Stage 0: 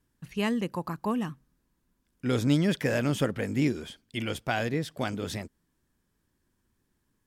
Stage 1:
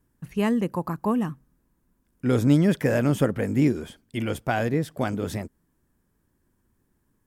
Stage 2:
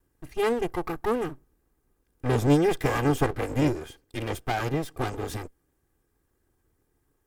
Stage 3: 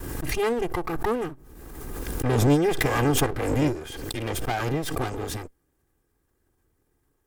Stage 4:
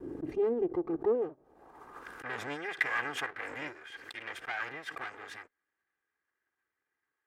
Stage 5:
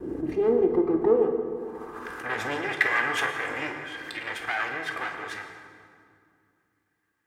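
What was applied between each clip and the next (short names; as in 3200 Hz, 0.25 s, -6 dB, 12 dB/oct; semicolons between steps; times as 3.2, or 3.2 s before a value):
bell 3900 Hz -9.5 dB 2 oct; gain +5.5 dB
minimum comb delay 2.5 ms
backwards sustainer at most 31 dB/s
band-pass sweep 340 Hz -> 1800 Hz, 0.93–2.33
reverb RT60 2.3 s, pre-delay 7 ms, DRR 3 dB; gain +7 dB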